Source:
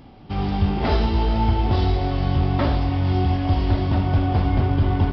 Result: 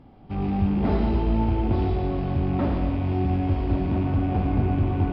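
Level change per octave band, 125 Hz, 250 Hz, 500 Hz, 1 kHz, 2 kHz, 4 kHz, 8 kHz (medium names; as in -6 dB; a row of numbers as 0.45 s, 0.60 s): -4.0 dB, 0.0 dB, -2.0 dB, -5.5 dB, -7.0 dB, -13.0 dB, no reading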